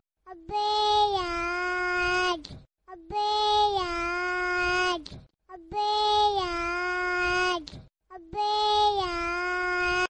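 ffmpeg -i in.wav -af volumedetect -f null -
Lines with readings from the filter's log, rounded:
mean_volume: -27.4 dB
max_volume: -13.6 dB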